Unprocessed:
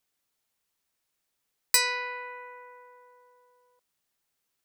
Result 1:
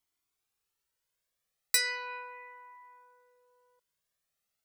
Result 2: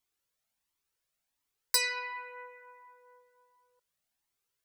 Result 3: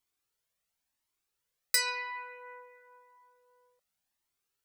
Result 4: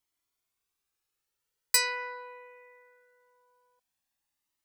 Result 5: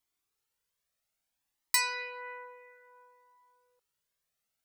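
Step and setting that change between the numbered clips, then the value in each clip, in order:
cascading flanger, rate: 0.36, 1.4, 0.94, 0.21, 0.59 Hz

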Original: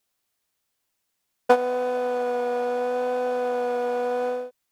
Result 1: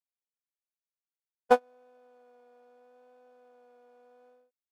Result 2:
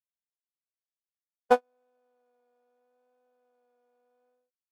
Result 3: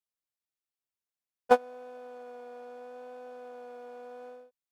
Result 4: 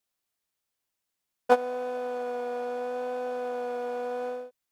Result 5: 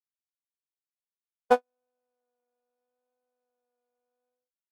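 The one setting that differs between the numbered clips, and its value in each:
gate, range: -34, -47, -20, -7, -59 dB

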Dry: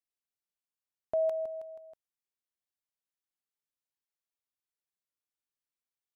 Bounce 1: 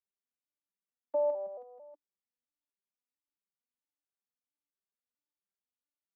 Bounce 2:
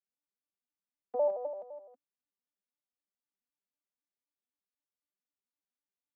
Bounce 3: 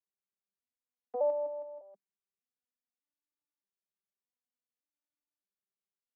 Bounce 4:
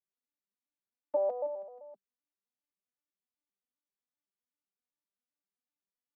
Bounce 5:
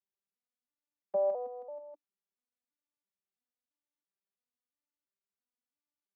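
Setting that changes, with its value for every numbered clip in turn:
arpeggiated vocoder, a note every: 224, 85, 602, 129, 336 ms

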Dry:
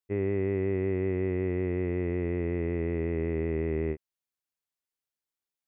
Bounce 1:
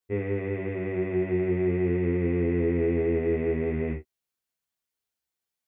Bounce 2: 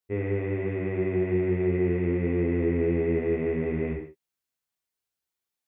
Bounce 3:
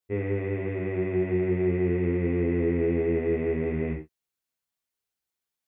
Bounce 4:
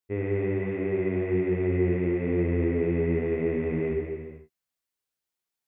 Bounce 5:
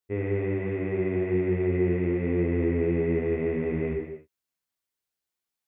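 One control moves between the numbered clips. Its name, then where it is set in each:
non-linear reverb, gate: 90, 200, 130, 540, 320 ms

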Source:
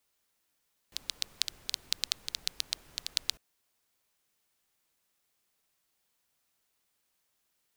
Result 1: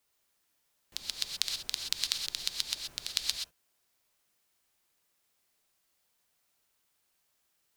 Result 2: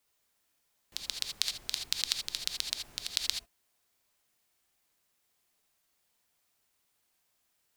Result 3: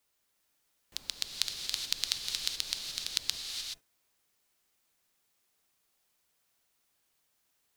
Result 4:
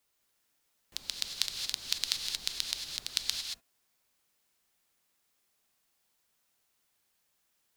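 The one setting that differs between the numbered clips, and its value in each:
non-linear reverb, gate: 0.15, 0.1, 0.45, 0.25 s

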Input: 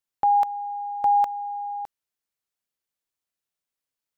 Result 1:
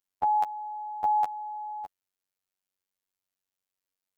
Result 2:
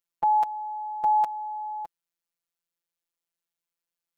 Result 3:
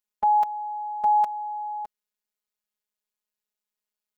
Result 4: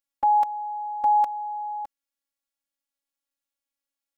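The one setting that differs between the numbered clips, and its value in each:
robotiser, frequency: 94, 170, 210, 280 Hz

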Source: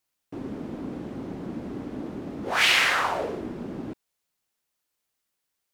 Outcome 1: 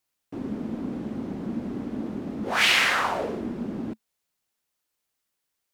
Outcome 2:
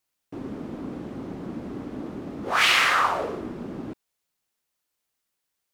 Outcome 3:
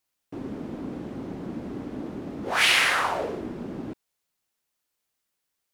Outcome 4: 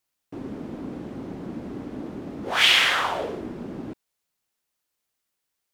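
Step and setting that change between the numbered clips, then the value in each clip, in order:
dynamic EQ, frequency: 220, 1200, 9900, 3300 Hz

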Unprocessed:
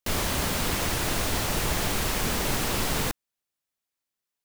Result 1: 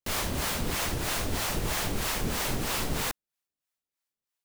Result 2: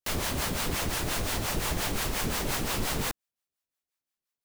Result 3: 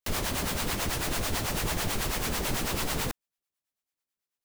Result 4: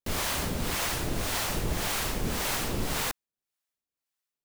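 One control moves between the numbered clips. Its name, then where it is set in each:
harmonic tremolo, rate: 3.1, 5.7, 9.1, 1.8 Hz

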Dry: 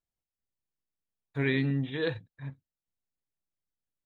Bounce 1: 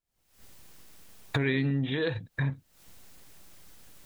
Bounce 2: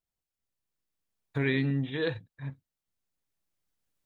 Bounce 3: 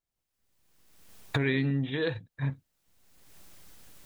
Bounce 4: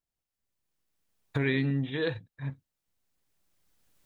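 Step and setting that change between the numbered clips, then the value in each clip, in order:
recorder AGC, rising by: 88, 5, 33, 12 dB/s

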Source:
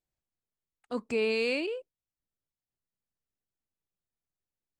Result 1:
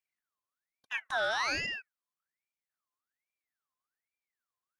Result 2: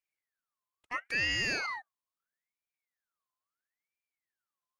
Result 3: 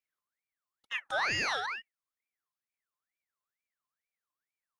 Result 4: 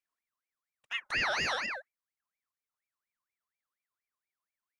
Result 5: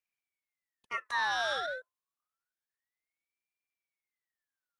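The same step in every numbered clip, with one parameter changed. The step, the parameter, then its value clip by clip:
ring modulator with a swept carrier, at: 1.2, 0.75, 2.2, 4.2, 0.28 Hz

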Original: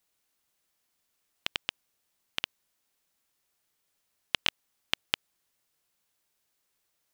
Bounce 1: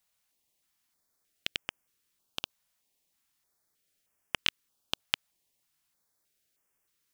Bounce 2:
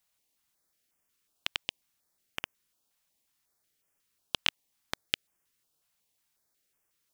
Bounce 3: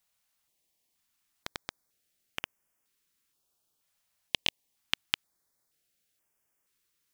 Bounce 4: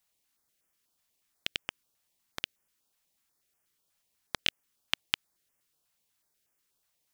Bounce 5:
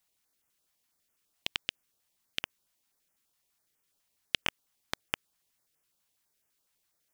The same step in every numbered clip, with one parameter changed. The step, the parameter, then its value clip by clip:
stepped notch, rate: 3.2, 5.5, 2.1, 8.2, 12 Hz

